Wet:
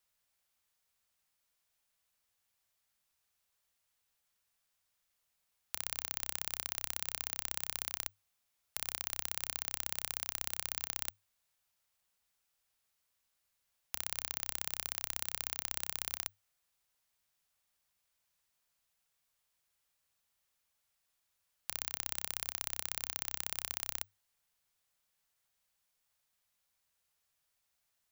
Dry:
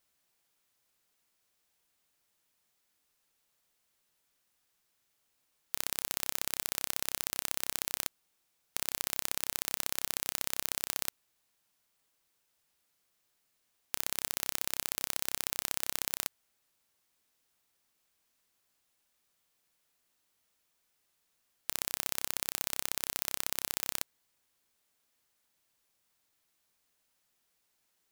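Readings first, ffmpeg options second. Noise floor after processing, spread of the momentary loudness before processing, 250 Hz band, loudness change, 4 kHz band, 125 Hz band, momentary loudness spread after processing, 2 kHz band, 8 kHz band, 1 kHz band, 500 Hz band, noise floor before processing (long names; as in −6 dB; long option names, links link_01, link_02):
−81 dBFS, 4 LU, −9.5 dB, −4.0 dB, −4.0 dB, −4.0 dB, 4 LU, −4.0 dB, −4.0 dB, −4.5 dB, −7.0 dB, −77 dBFS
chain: -af "equalizer=frequency=420:width=2:gain=-9.5,afreqshift=-100,volume=-4dB"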